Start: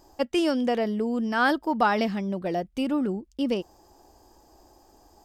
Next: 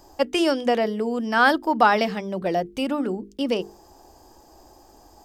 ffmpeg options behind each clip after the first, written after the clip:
ffmpeg -i in.wav -filter_complex "[0:a]acrossover=split=330[link_01][link_02];[link_01]alimiter=level_in=9dB:limit=-24dB:level=0:latency=1,volume=-9dB[link_03];[link_03][link_02]amix=inputs=2:normalize=0,bandreject=frequency=50:width_type=h:width=6,bandreject=frequency=100:width_type=h:width=6,bandreject=frequency=150:width_type=h:width=6,bandreject=frequency=200:width_type=h:width=6,bandreject=frequency=250:width_type=h:width=6,bandreject=frequency=300:width_type=h:width=6,bandreject=frequency=350:width_type=h:width=6,bandreject=frequency=400:width_type=h:width=6,bandreject=frequency=450:width_type=h:width=6,volume=5.5dB" out.wav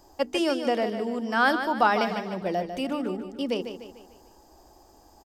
ffmpeg -i in.wav -af "aecho=1:1:149|298|447|596|745:0.355|0.163|0.0751|0.0345|0.0159,volume=-4.5dB" out.wav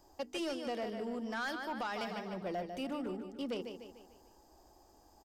ffmpeg -i in.wav -filter_complex "[0:a]acrossover=split=2100[link_01][link_02];[link_01]alimiter=limit=-18dB:level=0:latency=1:release=437[link_03];[link_03][link_02]amix=inputs=2:normalize=0,asoftclip=type=tanh:threshold=-23dB,volume=-8dB" out.wav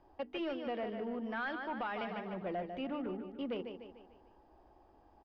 ffmpeg -i in.wav -af "lowpass=frequency=3000:width=0.5412,lowpass=frequency=3000:width=1.3066" out.wav

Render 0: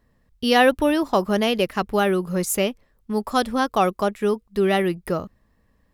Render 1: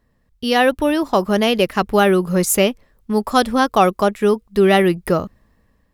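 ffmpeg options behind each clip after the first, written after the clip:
ffmpeg -i in.wav -af "dynaudnorm=framelen=360:gausssize=5:maxgain=11.5dB" out.wav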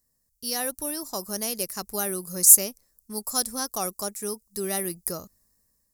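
ffmpeg -i in.wav -af "aexciter=amount=12.8:drive=8.3:freq=4900,volume=-18dB" out.wav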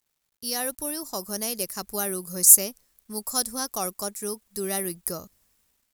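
ffmpeg -i in.wav -af "acrusher=bits=10:mix=0:aa=0.000001" out.wav

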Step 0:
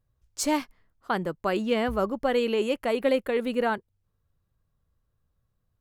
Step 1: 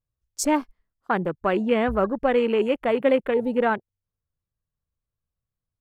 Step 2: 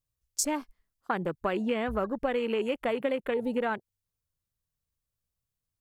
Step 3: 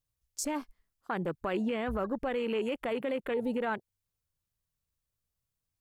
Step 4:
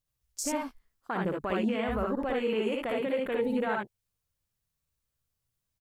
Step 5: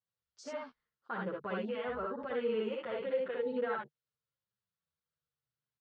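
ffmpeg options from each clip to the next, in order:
ffmpeg -i in.wav -af "afwtdn=0.0178,volume=4dB" out.wav
ffmpeg -i in.wav -af "highshelf=frequency=3200:gain=9,acompressor=threshold=-23dB:ratio=6,volume=-2.5dB" out.wav
ffmpeg -i in.wav -af "alimiter=limit=-23.5dB:level=0:latency=1:release=19" out.wav
ffmpeg -i in.wav -af "aecho=1:1:59|74:0.708|0.631" out.wav
ffmpeg -i in.wav -filter_complex "[0:a]highpass=140,equalizer=frequency=150:width_type=q:width=4:gain=5,equalizer=frequency=290:width_type=q:width=4:gain=-10,equalizer=frequency=490:width_type=q:width=4:gain=4,equalizer=frequency=700:width_type=q:width=4:gain=-4,equalizer=frequency=1400:width_type=q:width=4:gain=5,equalizer=frequency=2400:width_type=q:width=4:gain=-5,lowpass=frequency=4500:width=0.5412,lowpass=frequency=4500:width=1.3066,asplit=2[link_01][link_02];[link_02]adelay=7.4,afreqshift=-0.64[link_03];[link_01][link_03]amix=inputs=2:normalize=1,volume=-4dB" out.wav

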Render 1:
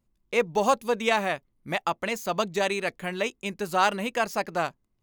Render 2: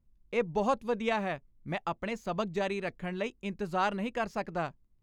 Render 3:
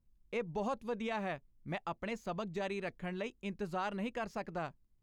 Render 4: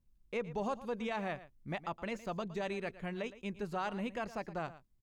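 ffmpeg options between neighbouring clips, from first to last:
ffmpeg -i in.wav -af "aemphasis=mode=reproduction:type=bsi,volume=-7dB" out.wav
ffmpeg -i in.wav -af "alimiter=limit=-23.5dB:level=0:latency=1:release=84,volume=-4dB" out.wav
ffmpeg -i in.wav -af "aecho=1:1:114:0.158" out.wav

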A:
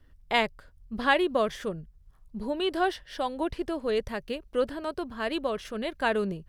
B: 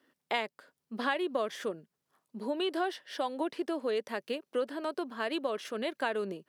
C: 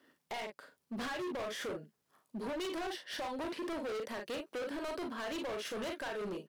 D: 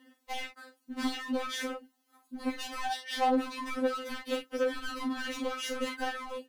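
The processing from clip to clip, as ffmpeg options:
ffmpeg -i in.wav -af "highpass=frequency=240:width=0.5412,highpass=frequency=240:width=1.3066,acompressor=threshold=-29dB:ratio=3" out.wav
ffmpeg -i in.wav -af "aecho=1:1:39|53:0.376|0.251,alimiter=limit=-23.5dB:level=0:latency=1:release=290,asoftclip=type=hard:threshold=-39dB,volume=2.5dB" out.wav
ffmpeg -i in.wav -af "afftfilt=real='re*3.46*eq(mod(b,12),0)':imag='im*3.46*eq(mod(b,12),0)':win_size=2048:overlap=0.75,volume=8dB" out.wav

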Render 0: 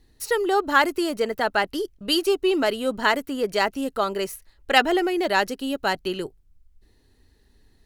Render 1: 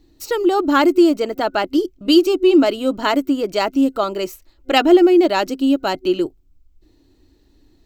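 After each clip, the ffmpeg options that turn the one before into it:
ffmpeg -i in.wav -af "superequalizer=6b=3.55:8b=1.41:11b=0.501:16b=0.282,volume=2.5dB" out.wav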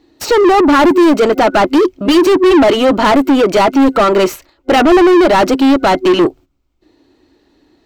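ffmpeg -i in.wav -filter_complex "[0:a]agate=range=-13dB:threshold=-43dB:ratio=16:detection=peak,asplit=2[link_01][link_02];[link_02]highpass=frequency=720:poles=1,volume=33dB,asoftclip=type=tanh:threshold=-1dB[link_03];[link_01][link_03]amix=inputs=2:normalize=0,lowpass=frequency=1500:poles=1,volume=-6dB" out.wav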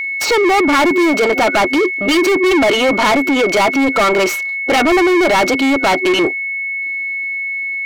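ffmpeg -i in.wav -filter_complex "[0:a]asplit=2[link_01][link_02];[link_02]highpass=frequency=720:poles=1,volume=20dB,asoftclip=type=tanh:threshold=-1.5dB[link_03];[link_01][link_03]amix=inputs=2:normalize=0,lowpass=frequency=6800:poles=1,volume=-6dB,aeval=exprs='sgn(val(0))*max(abs(val(0))-0.00447,0)':channel_layout=same,aeval=exprs='val(0)+0.251*sin(2*PI*2200*n/s)':channel_layout=same,volume=-6.5dB" out.wav

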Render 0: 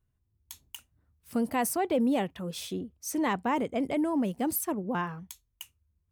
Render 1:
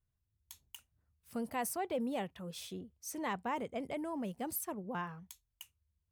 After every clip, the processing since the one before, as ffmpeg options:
ffmpeg -i in.wav -af "equalizer=frequency=290:width_type=o:width=0.67:gain=-6,volume=-7.5dB" out.wav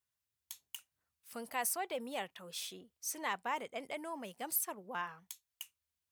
ffmpeg -i in.wav -af "highpass=frequency=1300:poles=1,volume=5dB" out.wav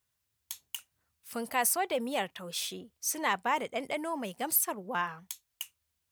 ffmpeg -i in.wav -af "lowshelf=frequency=210:gain=5,volume=7.5dB" out.wav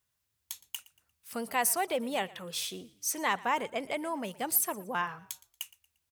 ffmpeg -i in.wav -filter_complex "[0:a]asplit=4[link_01][link_02][link_03][link_04];[link_02]adelay=116,afreqshift=-40,volume=-21dB[link_05];[link_03]adelay=232,afreqshift=-80,volume=-29.9dB[link_06];[link_04]adelay=348,afreqshift=-120,volume=-38.7dB[link_07];[link_01][link_05][link_06][link_07]amix=inputs=4:normalize=0" out.wav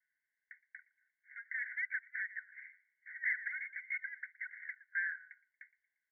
ffmpeg -i in.wav -af "aeval=exprs='0.0398*(abs(mod(val(0)/0.0398+3,4)-2)-1)':channel_layout=same,asuperpass=centerf=1800:order=20:qfactor=2.5,volume=7dB" out.wav

